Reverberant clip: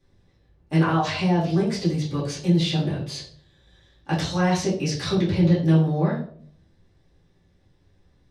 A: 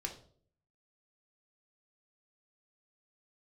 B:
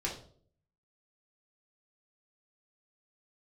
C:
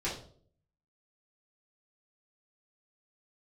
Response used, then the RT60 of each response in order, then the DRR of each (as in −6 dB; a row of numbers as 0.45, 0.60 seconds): C; 0.55, 0.55, 0.55 seconds; 2.0, −3.5, −8.5 decibels